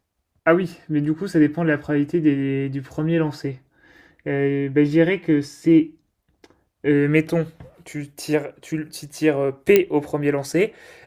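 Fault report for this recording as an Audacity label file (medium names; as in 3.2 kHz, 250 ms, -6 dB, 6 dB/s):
9.760000	9.760000	pop -2 dBFS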